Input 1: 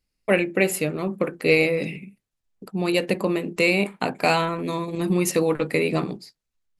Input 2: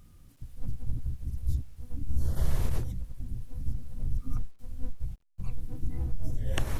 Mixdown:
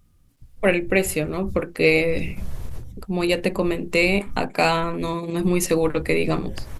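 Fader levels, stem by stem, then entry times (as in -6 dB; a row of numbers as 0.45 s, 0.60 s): +1.0 dB, -4.5 dB; 0.35 s, 0.00 s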